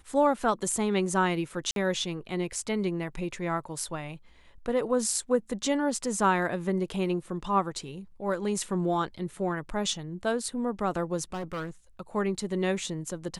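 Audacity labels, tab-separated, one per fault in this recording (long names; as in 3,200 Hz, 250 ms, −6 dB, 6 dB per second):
1.710000	1.760000	drop-out 52 ms
11.330000	11.700000	clipping −31 dBFS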